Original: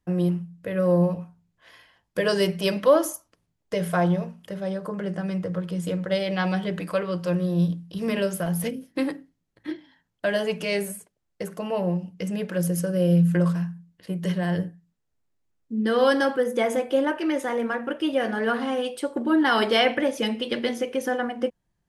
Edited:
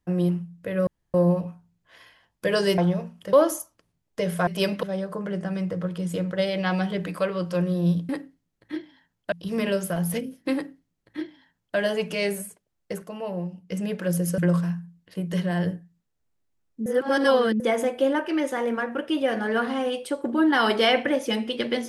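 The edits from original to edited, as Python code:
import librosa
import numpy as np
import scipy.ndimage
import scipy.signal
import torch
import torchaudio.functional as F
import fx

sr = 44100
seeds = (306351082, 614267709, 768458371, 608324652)

y = fx.edit(x, sr, fx.insert_room_tone(at_s=0.87, length_s=0.27),
    fx.swap(start_s=2.51, length_s=0.36, other_s=4.01, other_length_s=0.55),
    fx.duplicate(start_s=9.04, length_s=1.23, to_s=7.82),
    fx.clip_gain(start_s=11.52, length_s=0.7, db=-5.5),
    fx.cut(start_s=12.88, length_s=0.42),
    fx.reverse_span(start_s=15.78, length_s=0.74), tone=tone)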